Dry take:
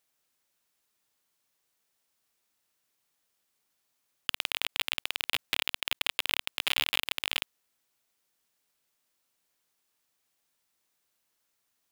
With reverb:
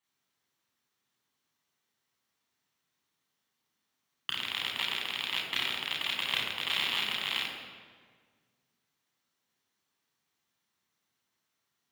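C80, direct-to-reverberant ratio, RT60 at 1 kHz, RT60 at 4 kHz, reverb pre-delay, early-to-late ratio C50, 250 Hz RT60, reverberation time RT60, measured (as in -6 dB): 4.0 dB, -3.0 dB, 1.6 s, 1.2 s, 3 ms, 2.5 dB, 2.0 s, 1.7 s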